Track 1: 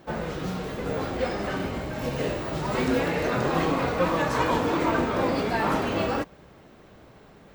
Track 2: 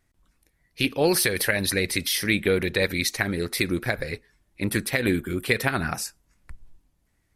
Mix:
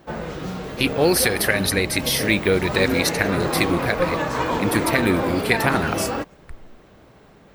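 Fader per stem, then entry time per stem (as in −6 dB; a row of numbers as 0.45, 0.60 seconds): +1.0, +3.0 decibels; 0.00, 0.00 seconds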